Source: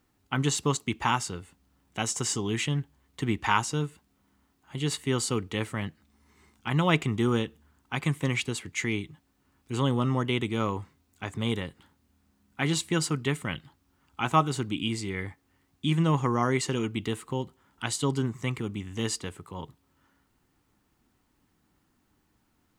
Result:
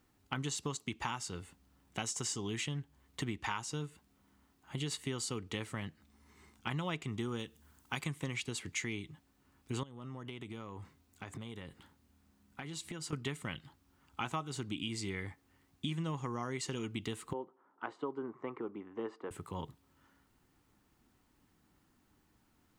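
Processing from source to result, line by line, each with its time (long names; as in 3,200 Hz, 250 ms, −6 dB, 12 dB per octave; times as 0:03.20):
0:07.39–0:08.04: high-shelf EQ 4,800 Hz +10.5 dB
0:09.83–0:13.13: downward compressor 12 to 1, threshold −39 dBFS
0:17.33–0:19.31: Chebyshev band-pass filter 350–1,200 Hz
whole clip: dynamic equaliser 5,300 Hz, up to +4 dB, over −47 dBFS, Q 0.72; downward compressor 6 to 1, threshold −34 dBFS; level −1 dB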